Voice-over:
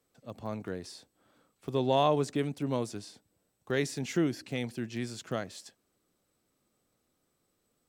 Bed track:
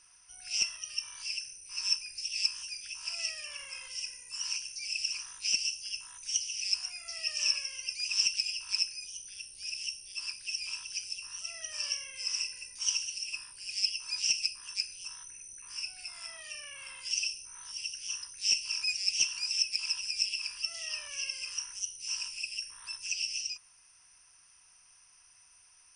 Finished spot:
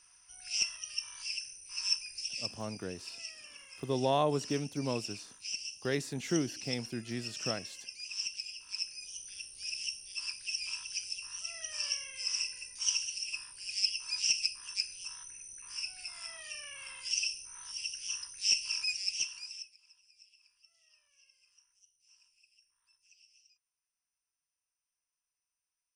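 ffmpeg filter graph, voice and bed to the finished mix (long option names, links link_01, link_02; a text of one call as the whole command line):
ffmpeg -i stem1.wav -i stem2.wav -filter_complex "[0:a]adelay=2150,volume=-3dB[link_01];[1:a]volume=7dB,afade=type=out:start_time=2.26:duration=0.2:silence=0.421697,afade=type=in:start_time=8.71:duration=0.52:silence=0.375837,afade=type=out:start_time=18.71:duration=1.04:silence=0.0334965[link_02];[link_01][link_02]amix=inputs=2:normalize=0" out.wav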